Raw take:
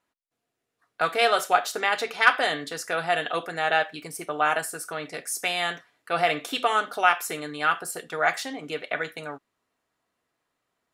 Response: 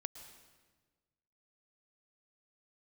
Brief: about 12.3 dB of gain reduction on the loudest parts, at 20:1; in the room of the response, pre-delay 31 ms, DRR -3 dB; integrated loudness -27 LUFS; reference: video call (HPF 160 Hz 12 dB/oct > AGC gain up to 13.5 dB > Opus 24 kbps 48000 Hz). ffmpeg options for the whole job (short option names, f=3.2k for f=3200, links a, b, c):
-filter_complex "[0:a]acompressor=threshold=-24dB:ratio=20,asplit=2[a][b];[1:a]atrim=start_sample=2205,adelay=31[c];[b][c]afir=irnorm=-1:irlink=0,volume=5.5dB[d];[a][d]amix=inputs=2:normalize=0,highpass=160,dynaudnorm=m=13.5dB" -ar 48000 -c:a libopus -b:a 24k